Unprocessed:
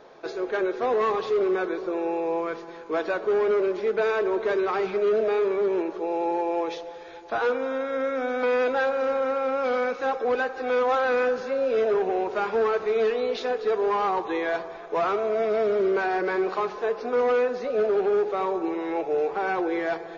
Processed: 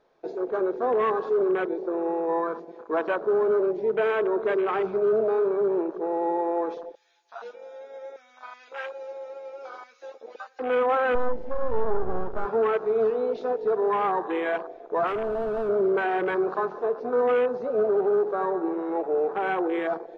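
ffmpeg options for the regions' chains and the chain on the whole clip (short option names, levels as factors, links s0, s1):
-filter_complex "[0:a]asettb=1/sr,asplit=3[s0][s1][s2];[s0]atrim=end=2.294[s3];[s1]atrim=start=2.29:end=3.17,asetpts=PTS-STARTPTS,afade=t=in:d=0.004:c=qsin,afade=t=out:st=0.876:d=0.004:c=qsin,highpass=f=43:w=0.5412,highpass=f=43:w=1.3066,equalizer=f=980:t=o:w=0.43:g=6.5[s4];[s2]atrim=start=3.166[s5];[s3][s4]acrossfade=d=0.004:c1=hsin:c2=qsin[s6];[s6][s5]acrossfade=d=0.004:c1=qsin:c2=hsin,asettb=1/sr,asplit=3[s7][s8][s9];[s7]atrim=end=6.954[s10];[s8]atrim=start=6.95:end=10.59,asetpts=PTS-STARTPTS,afade=t=in:d=0.004:c=qsin,afade=t=out:st=3.636:d=0.004:c=qsin,aderivative,acontrast=53,asplit=2[s11][s12];[s12]adelay=13,volume=0.794[s13];[s11][s13]amix=inputs=2:normalize=0,atrim=end_sample=160524[s14];[s9]atrim=start=10.586[s15];[s10][s14]acrossfade=d=0.004:c1=hsin:c2=qsin[s16];[s16][s15]acrossfade=d=0.004:c1=qsin:c2=hsin,asettb=1/sr,asplit=3[s17][s18][s19];[s17]atrim=end=11.154[s20];[s18]atrim=start=11.15:end=12.45,asetpts=PTS-STARTPTS,afade=t=in:d=0.004:c=qsin,afade=t=out:st=1.296:d=0.004:c=qsin,lowpass=f=2800:p=1,equalizer=f=88:w=0.66:g=6,aeval=exprs='max(val(0),0)':c=same[s21];[s19]atrim=start=12.446[s22];[s20][s21]acrossfade=d=0.004:c1=hsin:c2=qsin[s23];[s23][s22]acrossfade=d=0.004:c1=qsin:c2=hsin,asettb=1/sr,asplit=3[s24][s25][s26];[s24]atrim=end=15.074[s27];[s25]atrim=start=15.07:end=15.69,asetpts=PTS-STARTPTS,afade=t=in:d=0.004:c=qsin,afade=t=out:st=0.616:d=0.004:c=qsin,equalizer=f=560:t=o:w=2.4:g=2.5,asoftclip=type=hard:threshold=0.0501[s28];[s26]atrim=start=15.686[s29];[s27][s28]acrossfade=d=0.004:c1=hsin:c2=qsin[s30];[s30][s29]acrossfade=d=0.004:c1=qsin:c2=hsin,afwtdn=0.0282,lowshelf=f=60:g=9.5"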